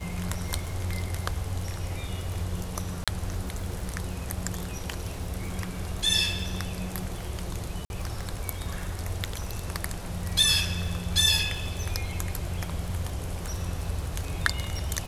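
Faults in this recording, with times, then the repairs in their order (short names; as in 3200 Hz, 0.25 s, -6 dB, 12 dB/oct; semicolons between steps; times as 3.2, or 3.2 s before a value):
crackle 36/s -34 dBFS
3.04–3.08 gap 36 ms
7.85–7.9 gap 51 ms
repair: de-click; interpolate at 3.04, 36 ms; interpolate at 7.85, 51 ms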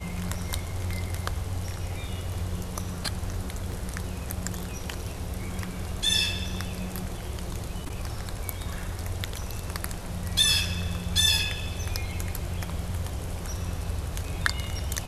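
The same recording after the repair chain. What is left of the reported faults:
none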